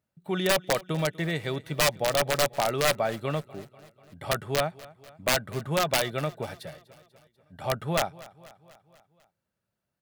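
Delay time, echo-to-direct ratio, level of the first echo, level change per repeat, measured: 245 ms, −19.0 dB, −21.0 dB, −4.5 dB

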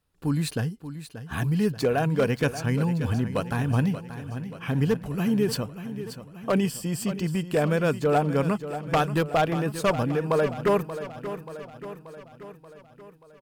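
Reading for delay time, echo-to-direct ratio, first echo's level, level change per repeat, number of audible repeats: 582 ms, −10.0 dB, −12.0 dB, −4.5 dB, 5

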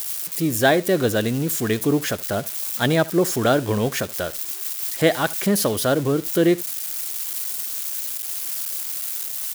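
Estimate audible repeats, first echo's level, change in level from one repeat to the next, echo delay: 1, −20.5 dB, repeats not evenly spaced, 74 ms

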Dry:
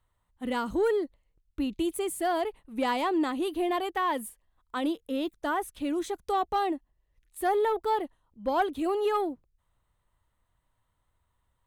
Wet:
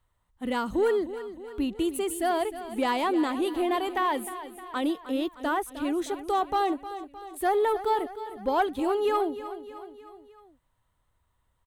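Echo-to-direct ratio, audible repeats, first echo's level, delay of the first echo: −11.5 dB, 4, −13.0 dB, 308 ms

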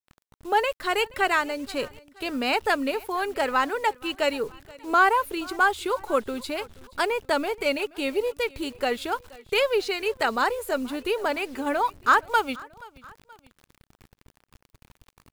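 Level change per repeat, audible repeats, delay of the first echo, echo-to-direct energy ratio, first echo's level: −6.0 dB, 2, 477 ms, −21.5 dB, −22.5 dB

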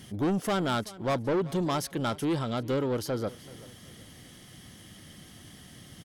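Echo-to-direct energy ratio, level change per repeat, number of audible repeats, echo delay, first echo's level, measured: −19.0 dB, −9.0 dB, 2, 381 ms, −19.5 dB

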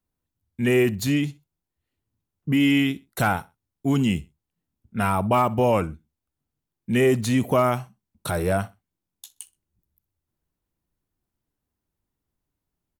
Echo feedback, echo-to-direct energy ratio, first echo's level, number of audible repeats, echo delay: 25%, −21.0 dB, −21.5 dB, 2, 63 ms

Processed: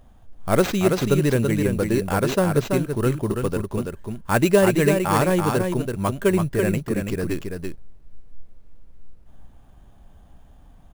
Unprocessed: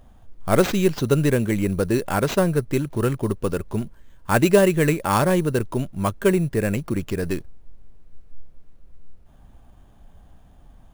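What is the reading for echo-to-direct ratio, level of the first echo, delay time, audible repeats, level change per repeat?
−5.0 dB, −5.0 dB, 332 ms, 1, repeats not evenly spaced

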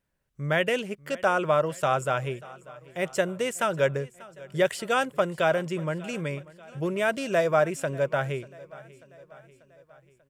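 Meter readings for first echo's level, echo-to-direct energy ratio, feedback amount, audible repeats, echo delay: −21.0 dB, −19.5 dB, 57%, 3, 590 ms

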